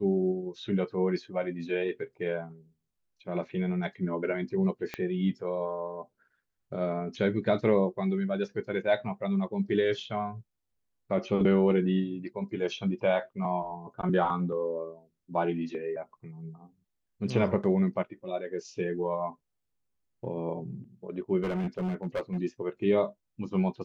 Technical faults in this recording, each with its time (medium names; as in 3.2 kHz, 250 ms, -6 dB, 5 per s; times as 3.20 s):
4.94 s: pop -19 dBFS
21.43–22.38 s: clipped -27 dBFS